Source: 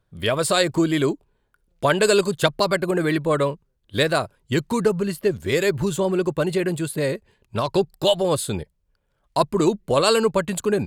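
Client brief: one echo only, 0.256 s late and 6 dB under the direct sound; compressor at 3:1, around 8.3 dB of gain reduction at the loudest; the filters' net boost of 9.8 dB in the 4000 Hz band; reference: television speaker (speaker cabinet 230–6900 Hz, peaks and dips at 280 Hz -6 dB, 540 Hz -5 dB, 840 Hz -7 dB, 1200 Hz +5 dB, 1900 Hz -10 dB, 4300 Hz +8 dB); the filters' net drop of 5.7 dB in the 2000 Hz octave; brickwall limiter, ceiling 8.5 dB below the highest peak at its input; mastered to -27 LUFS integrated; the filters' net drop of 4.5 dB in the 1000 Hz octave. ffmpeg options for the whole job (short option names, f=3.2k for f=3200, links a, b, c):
-af "equalizer=f=1k:t=o:g=-4,equalizer=f=2k:t=o:g=-5,equalizer=f=4k:t=o:g=7.5,acompressor=threshold=-25dB:ratio=3,alimiter=limit=-18dB:level=0:latency=1,highpass=f=230:w=0.5412,highpass=f=230:w=1.3066,equalizer=f=280:t=q:w=4:g=-6,equalizer=f=540:t=q:w=4:g=-5,equalizer=f=840:t=q:w=4:g=-7,equalizer=f=1.2k:t=q:w=4:g=5,equalizer=f=1.9k:t=q:w=4:g=-10,equalizer=f=4.3k:t=q:w=4:g=8,lowpass=f=6.9k:w=0.5412,lowpass=f=6.9k:w=1.3066,aecho=1:1:256:0.501,volume=2.5dB"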